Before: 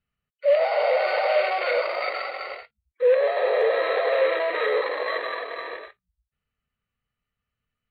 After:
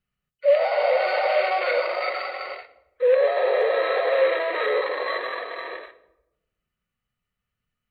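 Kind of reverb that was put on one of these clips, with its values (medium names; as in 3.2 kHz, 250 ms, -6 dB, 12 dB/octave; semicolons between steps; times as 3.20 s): simulated room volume 3400 m³, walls furnished, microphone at 0.99 m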